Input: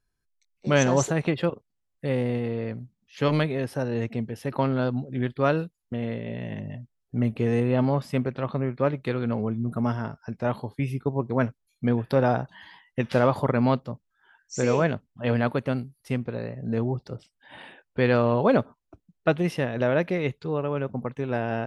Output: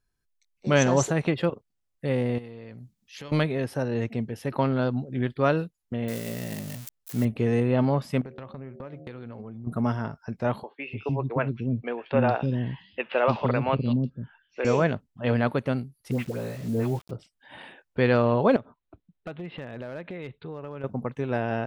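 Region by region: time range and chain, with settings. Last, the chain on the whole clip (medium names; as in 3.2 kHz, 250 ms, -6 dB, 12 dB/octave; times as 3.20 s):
2.38–3.32 s: treble shelf 2.7 kHz +9 dB + compression 5:1, threshold -39 dBFS
6.08–7.25 s: zero-crossing glitches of -25.5 dBFS + peaking EQ 100 Hz -5.5 dB 0.3 oct
8.21–9.67 s: gate -39 dBFS, range -43 dB + de-hum 76.96 Hz, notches 10 + compression 12:1, threshold -35 dBFS
10.63–14.65 s: low-pass 4.4 kHz 24 dB/octave + peaking EQ 2.7 kHz +11.5 dB 0.26 oct + three bands offset in time mids, highs, lows 180/300 ms, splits 350/3400 Hz
16.11–17.11 s: band-stop 1.7 kHz, Q 19 + phase dispersion highs, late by 87 ms, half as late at 1 kHz + word length cut 8-bit, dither none
18.56–20.84 s: elliptic low-pass 3.9 kHz + compression 5:1, threshold -34 dBFS + overload inside the chain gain 29 dB
whole clip: none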